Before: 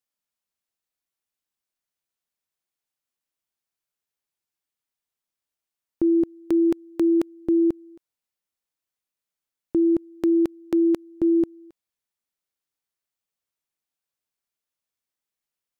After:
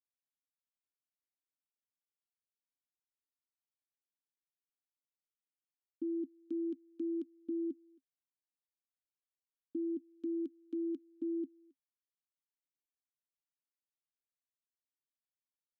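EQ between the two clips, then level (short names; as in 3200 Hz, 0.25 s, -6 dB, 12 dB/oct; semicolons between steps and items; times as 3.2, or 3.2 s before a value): vowel filter i; fixed phaser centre 560 Hz, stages 6; -6.0 dB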